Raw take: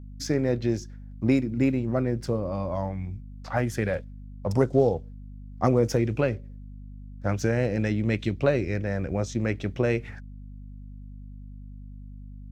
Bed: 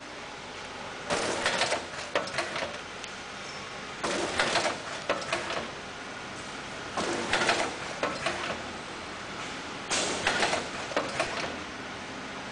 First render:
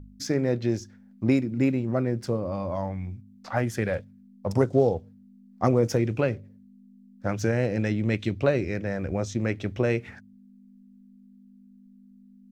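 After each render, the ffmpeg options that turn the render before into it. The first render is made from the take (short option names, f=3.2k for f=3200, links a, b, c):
-af "bandreject=f=50:t=h:w=4,bandreject=f=100:t=h:w=4,bandreject=f=150:t=h:w=4"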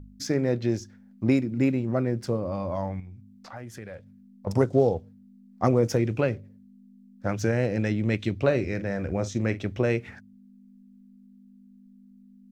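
-filter_complex "[0:a]asettb=1/sr,asplit=3[a][b][c];[a]atrim=end=3.004[d];[b]atrim=start=3:end=4.47,asetpts=PTS-STARTPTS,afade=t=in:d=0.004:c=qsin,afade=t=out:st=1.466:d=0.004:c=qsin,acompressor=threshold=-43dB:ratio=2.5:attack=3.2:release=140:knee=1:detection=peak[e];[c]atrim=start=4.466[f];[d][e]acrossfade=d=0.004:c1=hsin:c2=qsin[g];[g][f]acrossfade=d=0.004:c1=qsin:c2=hsin,asettb=1/sr,asplit=3[h][i][j];[h]atrim=end=8.404[k];[i]atrim=start=8.4:end=9.63,asetpts=PTS-STARTPTS,afade=t=in:d=0.004:c=qsin,afade=t=out:st=1.226:d=0.004:c=qsin,asplit=2[l][m];[m]adelay=45,volume=-14dB[n];[l][n]amix=inputs=2:normalize=0,atrim=end_sample=54243[o];[j]atrim=start=9.626[p];[k][o]acrossfade=d=0.004:c1=hsin:c2=qsin[q];[q][p]acrossfade=d=0.004:c1=qsin:c2=hsin"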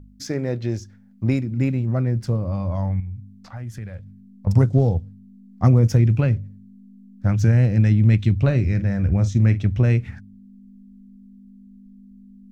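-af "asubboost=boost=8:cutoff=150"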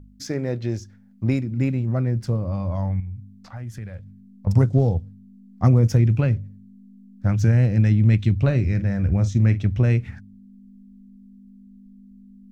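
-af "volume=-1dB"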